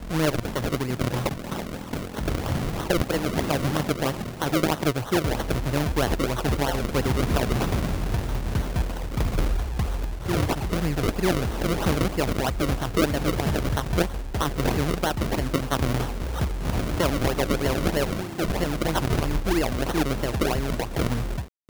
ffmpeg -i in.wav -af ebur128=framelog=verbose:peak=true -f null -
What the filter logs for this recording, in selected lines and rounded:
Integrated loudness:
  I:         -26.0 LUFS
  Threshold: -36.0 LUFS
Loudness range:
  LRA:         2.3 LU
  Threshold: -45.9 LUFS
  LRA low:   -27.3 LUFS
  LRA high:  -25.0 LUFS
True peak:
  Peak:       -7.9 dBFS